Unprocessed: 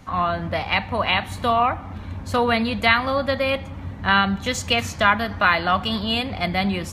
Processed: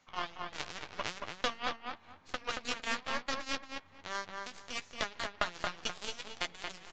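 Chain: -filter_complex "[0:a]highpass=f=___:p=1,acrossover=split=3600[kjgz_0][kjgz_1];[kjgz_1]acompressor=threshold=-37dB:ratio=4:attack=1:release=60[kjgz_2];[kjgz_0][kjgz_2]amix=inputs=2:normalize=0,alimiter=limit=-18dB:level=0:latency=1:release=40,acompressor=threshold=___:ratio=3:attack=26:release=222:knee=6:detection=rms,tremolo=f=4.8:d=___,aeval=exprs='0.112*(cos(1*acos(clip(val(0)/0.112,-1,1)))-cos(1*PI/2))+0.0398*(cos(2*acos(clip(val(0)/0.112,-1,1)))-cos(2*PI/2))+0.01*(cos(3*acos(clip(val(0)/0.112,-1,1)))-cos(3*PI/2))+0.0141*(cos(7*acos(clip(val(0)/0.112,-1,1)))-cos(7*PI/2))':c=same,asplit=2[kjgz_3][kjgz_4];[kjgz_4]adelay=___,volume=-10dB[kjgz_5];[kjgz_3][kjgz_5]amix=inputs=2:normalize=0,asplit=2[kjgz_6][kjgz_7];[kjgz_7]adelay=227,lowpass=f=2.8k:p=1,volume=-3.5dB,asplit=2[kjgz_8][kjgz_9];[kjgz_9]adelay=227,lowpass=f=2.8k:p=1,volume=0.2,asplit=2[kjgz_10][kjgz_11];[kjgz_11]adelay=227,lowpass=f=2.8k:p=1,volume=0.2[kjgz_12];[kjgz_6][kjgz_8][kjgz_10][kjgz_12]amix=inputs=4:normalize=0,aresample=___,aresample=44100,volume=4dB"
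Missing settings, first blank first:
1.3k, -33dB, 0.55, 12, 16000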